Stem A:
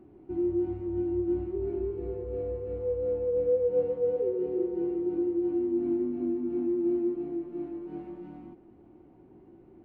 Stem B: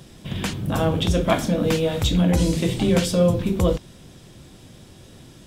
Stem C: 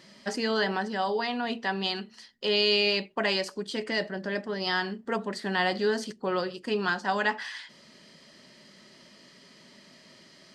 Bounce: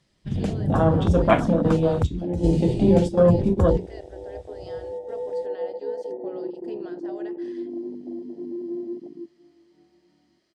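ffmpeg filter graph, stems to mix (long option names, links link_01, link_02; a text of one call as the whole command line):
ffmpeg -i stem1.wav -i stem2.wav -i stem3.wav -filter_complex "[0:a]highpass=frequency=49:width=0.5412,highpass=frequency=49:width=1.3066,adelay=1850,volume=-3.5dB[link_01];[1:a]lowpass=frequency=10000:width=0.5412,lowpass=frequency=10000:width=1.3066,bandreject=frequency=60:width_type=h:width=6,bandreject=frequency=120:width_type=h:width=6,bandreject=frequency=180:width_type=h:width=6,bandreject=frequency=240:width_type=h:width=6,bandreject=frequency=300:width_type=h:width=6,bandreject=frequency=360:width_type=h:width=6,bandreject=frequency=420:width_type=h:width=6,bandreject=frequency=480:width_type=h:width=6,volume=3dB[link_02];[2:a]highpass=320,acompressor=threshold=-29dB:ratio=4,volume=-2.5dB,asplit=2[link_03][link_04];[link_04]apad=whole_len=240845[link_05];[link_02][link_05]sidechaingate=range=-10dB:threshold=-45dB:ratio=16:detection=peak[link_06];[link_01][link_06][link_03]amix=inputs=3:normalize=0,afwtdn=0.0631" out.wav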